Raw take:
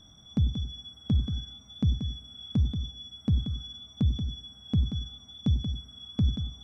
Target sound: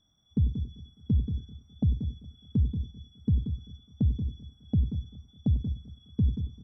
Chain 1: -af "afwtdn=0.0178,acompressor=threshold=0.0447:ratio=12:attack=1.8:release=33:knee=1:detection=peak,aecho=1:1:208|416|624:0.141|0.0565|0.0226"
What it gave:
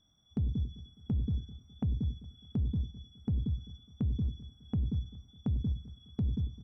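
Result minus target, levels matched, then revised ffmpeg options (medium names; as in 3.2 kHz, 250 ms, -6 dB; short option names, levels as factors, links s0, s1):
compression: peak gain reduction +8.5 dB
-af "afwtdn=0.0178,aecho=1:1:208|416|624:0.141|0.0565|0.0226"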